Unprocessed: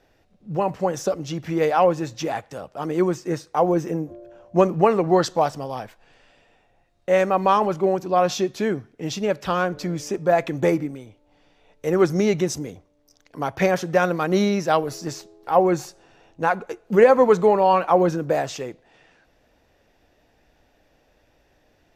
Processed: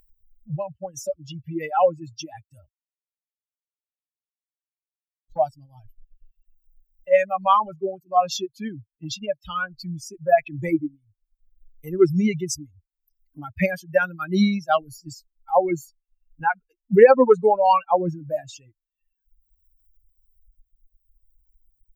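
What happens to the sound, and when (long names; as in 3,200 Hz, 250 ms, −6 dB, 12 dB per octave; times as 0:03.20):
0:02.69–0:05.31: silence
whole clip: spectral dynamics exaggerated over time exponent 3; upward compression, threshold −37 dBFS; level +6 dB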